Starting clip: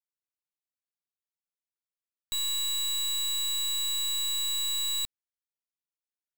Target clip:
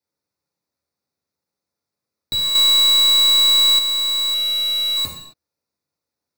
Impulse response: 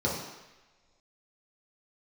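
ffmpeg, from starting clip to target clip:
-filter_complex "[1:a]atrim=start_sample=2205,afade=type=out:start_time=0.33:duration=0.01,atrim=end_sample=14994[link_01];[0:a][link_01]afir=irnorm=-1:irlink=0,asettb=1/sr,asplit=3[link_02][link_03][link_04];[link_02]atrim=end=2.554[link_05];[link_03]atrim=start=2.55:end=3.79,asetpts=PTS-STARTPTS,afade=type=in:duration=0.004:curve=qsin,afade=type=out:start_time=1.236:duration=0.004:curve=qsin,acontrast=64[link_06];[link_04]atrim=start=3.786[link_07];[link_05][link_06]acrossfade=duration=0.004:curve1=hsin:curve2=qsin[link_08];[link_08][link_07]acrossfade=duration=0.004:curve1=qsin:curve2=hsin,equalizer=frequency=3100:width=5.9:gain=-12,asettb=1/sr,asplit=3[link_09][link_10][link_11];[link_09]atrim=end=4.344[link_12];[link_10]atrim=start=4.34:end=4.97,asetpts=PTS-STARTPTS,afade=type=in:duration=0.004:curve=qsin,afade=type=out:start_time=0.626:duration=0.004:curve=qsin,asplit=2[link_13][link_14];[link_14]highpass=frequency=720:poles=1,volume=25dB,asoftclip=type=tanh:threshold=-18dB[link_15];[link_13][link_15]amix=inputs=2:normalize=0,lowpass=frequency=3400:poles=1,volume=-6dB[link_16];[link_11]atrim=start=4.966[link_17];[link_12][link_16]acrossfade=duration=0.004:curve1=hsin:curve2=qsin[link_18];[link_18][link_17]acrossfade=duration=0.004:curve1=qsin:curve2=hsin,volume=4.5dB"

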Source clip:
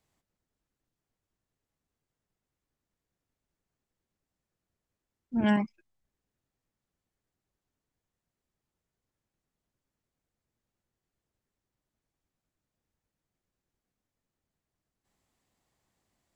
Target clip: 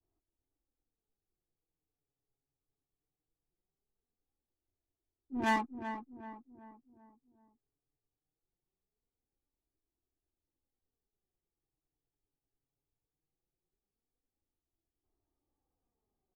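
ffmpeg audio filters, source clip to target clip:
ffmpeg -i in.wav -filter_complex "[0:a]asetrate=46722,aresample=44100,atempo=0.943874,flanger=delay=3:depth=4.3:regen=29:speed=0.2:shape=sinusoidal,adynamicequalizer=threshold=0.00708:dfrequency=1300:dqfactor=0.72:tfrequency=1300:tqfactor=0.72:attack=5:release=100:ratio=0.375:range=3.5:mode=boostabove:tftype=bell,acrossover=split=180|1500[link_01][link_02][link_03];[link_03]acrusher=bits=6:mix=0:aa=0.000001[link_04];[link_01][link_02][link_04]amix=inputs=3:normalize=0,adynamicsmooth=sensitivity=5.5:basefreq=1200,aecho=1:1:2.5:0.49,asplit=2[link_05][link_06];[link_06]adelay=383,lowpass=frequency=1300:poles=1,volume=-8.5dB,asplit=2[link_07][link_08];[link_08]adelay=383,lowpass=frequency=1300:poles=1,volume=0.48,asplit=2[link_09][link_10];[link_10]adelay=383,lowpass=frequency=1300:poles=1,volume=0.48,asplit=2[link_11][link_12];[link_12]adelay=383,lowpass=frequency=1300:poles=1,volume=0.48,asplit=2[link_13][link_14];[link_14]adelay=383,lowpass=frequency=1300:poles=1,volume=0.48[link_15];[link_05][link_07][link_09][link_11][link_13][link_15]amix=inputs=6:normalize=0,volume=-2dB" out.wav

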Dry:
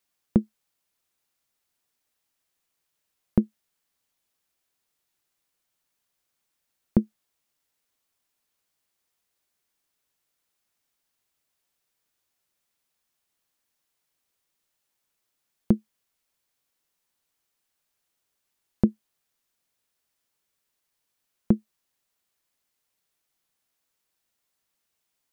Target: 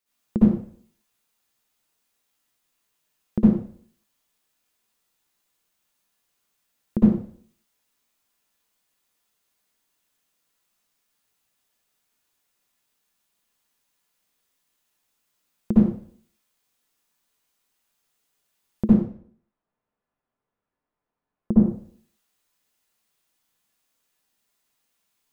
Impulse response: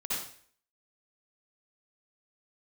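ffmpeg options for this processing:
-filter_complex "[0:a]asettb=1/sr,asplit=3[link_01][link_02][link_03];[link_01]atrim=end=18.884[link_04];[link_02]atrim=start=18.88:end=21.53,asetpts=PTS-STARTPTS,afade=type=in:duration=0.004:curve=qsin,afade=type=out:start_time=2.646:duration=0.004:curve=qsin,lowpass=1100[link_05];[link_03]atrim=start=21.526[link_06];[link_04][link_05]acrossfade=duration=0.004:curve1=hsin:curve2=qsin[link_07];[link_07][link_06]acrossfade=duration=0.004:curve1=qsin:curve2=hsin[link_08];[1:a]atrim=start_sample=2205[link_09];[link_08][link_09]afir=irnorm=-1:irlink=0"

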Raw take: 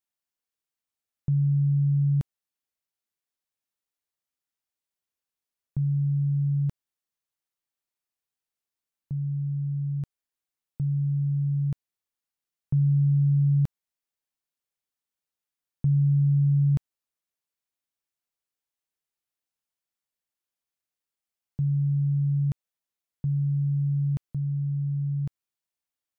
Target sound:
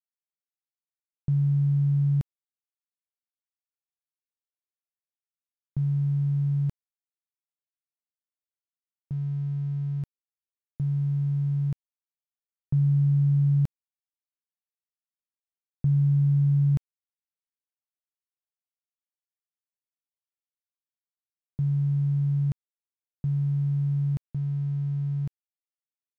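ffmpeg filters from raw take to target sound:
ffmpeg -i in.wav -af "aeval=exprs='sgn(val(0))*max(abs(val(0))-0.002,0)':channel_layout=same" out.wav

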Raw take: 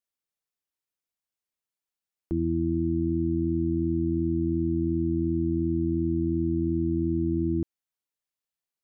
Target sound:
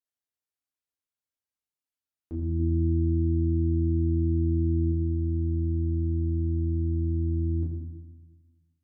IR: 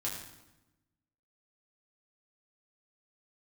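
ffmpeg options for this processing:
-filter_complex "[0:a]asettb=1/sr,asplit=3[link_01][link_02][link_03];[link_01]atrim=end=2.594[link_04];[link_02]atrim=start=2.59:end=4.92,asetpts=PTS-STARTPTS,afade=type=in:duration=0.004:curve=qsin,afade=type=out:start_time=2.326:duration=0.004:curve=qsin,equalizer=frequency=270:width_type=o:width=2.5:gain=4.5[link_05];[link_03]atrim=start=4.916[link_06];[link_04][link_05]acrossfade=duration=0.004:curve1=hsin:curve2=qsin[link_07];[link_07][link_06]acrossfade=duration=0.004:curve1=qsin:curve2=hsin[link_08];[1:a]atrim=start_sample=2205,asetrate=39249,aresample=44100[link_09];[link_08][link_09]afir=irnorm=-1:irlink=0,volume=-8dB"

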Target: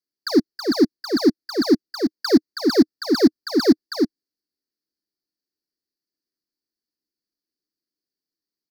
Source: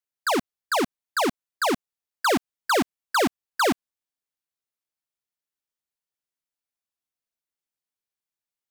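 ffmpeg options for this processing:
ffmpeg -i in.wav -filter_complex "[0:a]firequalizer=gain_entry='entry(110,0);entry(310,15);entry(590,-4);entry(880,-14);entry(1800,-1);entry(2800,-25);entry(4500,12);entry(7600,-12);entry(13000,-3)':delay=0.05:min_phase=1,asplit=2[link_01][link_02];[link_02]aecho=0:1:323:0.562[link_03];[link_01][link_03]amix=inputs=2:normalize=0,volume=-1.5dB" out.wav

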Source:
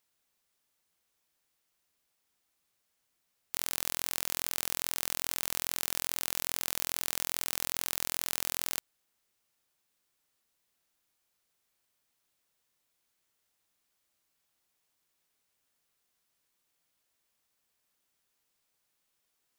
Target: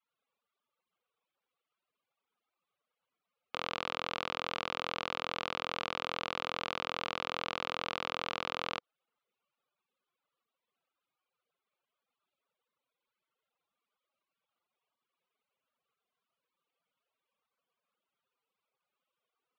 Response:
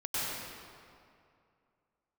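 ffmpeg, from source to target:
-af "afftfilt=real='re*gte(hypot(re,im),0.0001)':imag='im*gte(hypot(re,im),0.0001)':win_size=1024:overlap=0.75,aeval=exprs='0.596*(cos(1*acos(clip(val(0)/0.596,-1,1)))-cos(1*PI/2))+0.237*(cos(2*acos(clip(val(0)/0.596,-1,1)))-cos(2*PI/2))':channel_layout=same,highpass=170,equalizer=frequency=310:width_type=q:width=4:gain=-6,equalizer=frequency=500:width_type=q:width=4:gain=6,equalizer=frequency=1200:width_type=q:width=4:gain=7,equalizer=frequency=1800:width_type=q:width=4:gain=-8,lowpass=frequency=3300:width=0.5412,lowpass=frequency=3300:width=1.3066"

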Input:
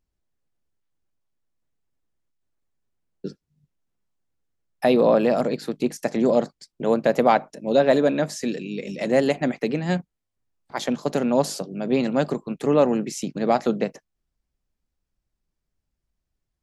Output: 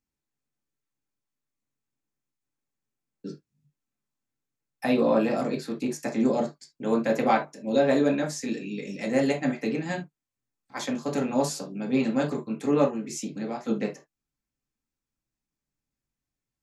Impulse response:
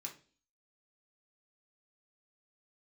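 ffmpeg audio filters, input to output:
-filter_complex "[0:a]asplit=3[link_01][link_02][link_03];[link_01]afade=type=out:start_time=12.85:duration=0.02[link_04];[link_02]acompressor=threshold=-26dB:ratio=4,afade=type=in:start_time=12.85:duration=0.02,afade=type=out:start_time=13.67:duration=0.02[link_05];[link_03]afade=type=in:start_time=13.67:duration=0.02[link_06];[link_04][link_05][link_06]amix=inputs=3:normalize=0[link_07];[1:a]atrim=start_sample=2205,atrim=end_sample=3528[link_08];[link_07][link_08]afir=irnorm=-1:irlink=0"

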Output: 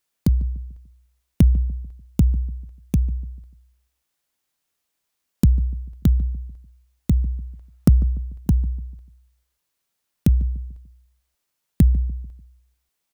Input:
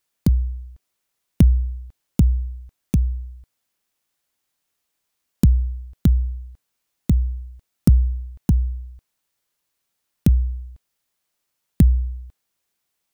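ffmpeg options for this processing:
ffmpeg -i in.wav -filter_complex "[0:a]asplit=3[link_01][link_02][link_03];[link_01]afade=type=out:start_time=7.15:duration=0.02[link_04];[link_02]equalizer=frequency=910:width_type=o:width=2.7:gain=7,afade=type=in:start_time=7.15:duration=0.02,afade=type=out:start_time=8.24:duration=0.02[link_05];[link_03]afade=type=in:start_time=8.24:duration=0.02[link_06];[link_04][link_05][link_06]amix=inputs=3:normalize=0,asplit=2[link_07][link_08];[link_08]adelay=147,lowpass=frequency=850:poles=1,volume=-17dB,asplit=2[link_09][link_10];[link_10]adelay=147,lowpass=frequency=850:poles=1,volume=0.42,asplit=2[link_11][link_12];[link_12]adelay=147,lowpass=frequency=850:poles=1,volume=0.42,asplit=2[link_13][link_14];[link_14]adelay=147,lowpass=frequency=850:poles=1,volume=0.42[link_15];[link_07][link_09][link_11][link_13][link_15]amix=inputs=5:normalize=0,volume=-1dB" out.wav

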